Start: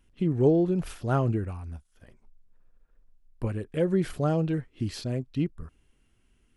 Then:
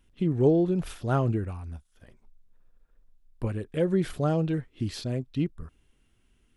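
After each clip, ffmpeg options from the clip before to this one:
ffmpeg -i in.wav -af "equalizer=frequency=3600:width_type=o:width=0.22:gain=4.5" out.wav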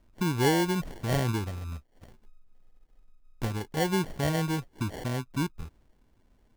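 ffmpeg -i in.wav -filter_complex "[0:a]asplit=2[link_01][link_02];[link_02]acompressor=threshold=-34dB:ratio=6,volume=1dB[link_03];[link_01][link_03]amix=inputs=2:normalize=0,acrusher=samples=35:mix=1:aa=0.000001,volume=-4.5dB" out.wav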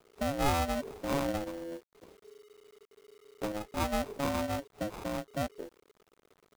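ffmpeg -i in.wav -af "aeval=exprs='val(0)*sin(2*PI*420*n/s)':channel_layout=same,acrusher=bits=9:mix=0:aa=0.000001,volume=-1.5dB" out.wav

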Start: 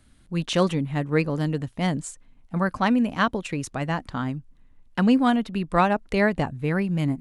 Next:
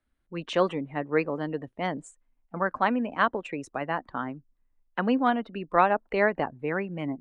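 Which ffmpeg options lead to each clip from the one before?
ffmpeg -i in.wav -filter_complex "[0:a]afftdn=noise_reduction=16:noise_floor=-42,acrossover=split=290 2600:gain=0.158 1 0.251[link_01][link_02][link_03];[link_01][link_02][link_03]amix=inputs=3:normalize=0" out.wav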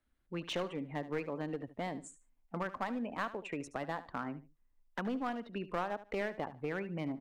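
ffmpeg -i in.wav -af "acompressor=threshold=-33dB:ratio=3,aeval=exprs='clip(val(0),-1,0.0251)':channel_layout=same,aecho=1:1:74|148:0.178|0.0391,volume=-2dB" out.wav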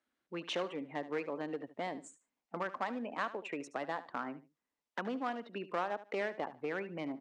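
ffmpeg -i in.wav -af "highpass=270,lowpass=7400,volume=1dB" out.wav

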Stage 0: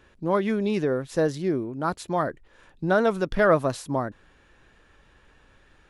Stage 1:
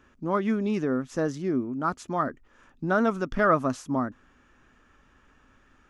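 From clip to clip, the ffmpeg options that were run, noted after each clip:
ffmpeg -i in.wav -af "equalizer=frequency=250:width_type=o:width=0.33:gain=11,equalizer=frequency=500:width_type=o:width=0.33:gain=-3,equalizer=frequency=1250:width_type=o:width=0.33:gain=8,equalizer=frequency=4000:width_type=o:width=0.33:gain=-7,equalizer=frequency=6300:width_type=o:width=0.33:gain=5,equalizer=frequency=10000:width_type=o:width=0.33:gain=-9,volume=-4dB" out.wav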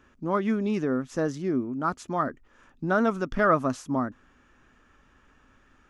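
ffmpeg -i in.wav -af anull out.wav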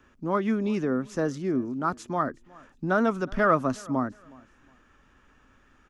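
ffmpeg -i in.wav -filter_complex "[0:a]acrossover=split=350|620|2300[link_01][link_02][link_03][link_04];[link_02]volume=25.5dB,asoftclip=hard,volume=-25.5dB[link_05];[link_01][link_05][link_03][link_04]amix=inputs=4:normalize=0,aecho=1:1:365|730:0.0631|0.0177" out.wav

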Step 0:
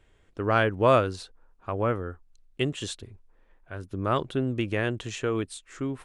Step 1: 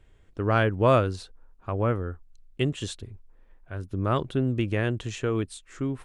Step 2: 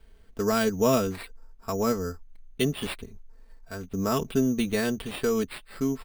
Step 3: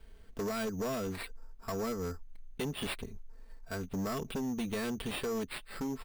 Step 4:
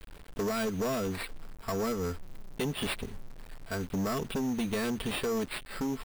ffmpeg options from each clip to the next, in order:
ffmpeg -i in.wav -af "lowshelf=frequency=220:gain=7.5,volume=-1.5dB" out.wav
ffmpeg -i in.wav -filter_complex "[0:a]aecho=1:1:4.5:0.85,acrossover=split=410|3000[link_01][link_02][link_03];[link_02]acompressor=threshold=-27dB:ratio=2.5[link_04];[link_01][link_04][link_03]amix=inputs=3:normalize=0,acrusher=samples=7:mix=1:aa=0.000001" out.wav
ffmpeg -i in.wav -af "acompressor=threshold=-30dB:ratio=4,volume=31dB,asoftclip=hard,volume=-31dB" out.wav
ffmpeg -i in.wav -af "acrusher=bits=8:mix=0:aa=0.000001,volume=4dB" out.wav

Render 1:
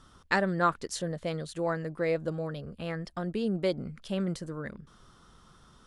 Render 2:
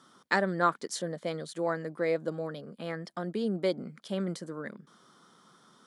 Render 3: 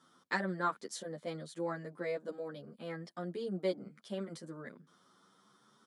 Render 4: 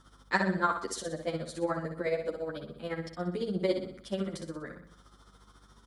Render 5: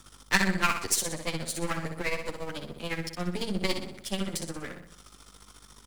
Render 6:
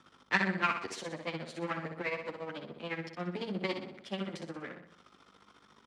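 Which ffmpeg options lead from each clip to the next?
ffmpeg -i in.wav -af "highpass=frequency=180:width=0.5412,highpass=frequency=180:width=1.3066,bandreject=frequency=2700:width=7.5" out.wav
ffmpeg -i in.wav -filter_complex "[0:a]asplit=2[link_01][link_02];[link_02]adelay=9.3,afreqshift=0.64[link_03];[link_01][link_03]amix=inputs=2:normalize=1,volume=-4dB" out.wav
ffmpeg -i in.wav -af "aeval=exprs='val(0)+0.000501*(sin(2*PI*50*n/s)+sin(2*PI*2*50*n/s)/2+sin(2*PI*3*50*n/s)/3+sin(2*PI*4*50*n/s)/4+sin(2*PI*5*50*n/s)/5)':channel_layout=same,tremolo=f=14:d=0.66,aecho=1:1:62|124|186|248|310|372:0.447|0.21|0.0987|0.0464|0.0218|0.0102,volume=8dB" out.wav
ffmpeg -i in.wav -filter_complex "[0:a]aeval=exprs='if(lt(val(0),0),0.251*val(0),val(0))':channel_layout=same,acrossover=split=300|960[link_01][link_02][link_03];[link_02]acompressor=threshold=-46dB:ratio=6[link_04];[link_01][link_04][link_03]amix=inputs=3:normalize=0,aexciter=amount=2:drive=5.7:freq=2100,volume=6.5dB" out.wav
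ffmpeg -i in.wav -af "highpass=180,lowpass=2800,volume=-3dB" out.wav

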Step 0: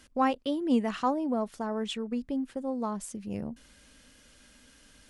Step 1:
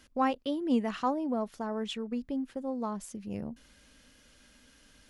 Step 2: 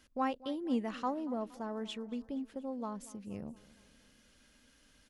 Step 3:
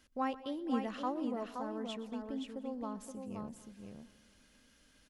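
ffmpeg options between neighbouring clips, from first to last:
ffmpeg -i in.wav -af "equalizer=frequency=8500:width_type=o:width=0.33:gain=-5.5,volume=-2dB" out.wav
ffmpeg -i in.wav -af "aecho=1:1:234|468|702|936|1170:0.106|0.0593|0.0332|0.0186|0.0104,volume=-5.5dB" out.wav
ffmpeg -i in.wav -af "aecho=1:1:122|523:0.119|0.531,volume=-2dB" out.wav

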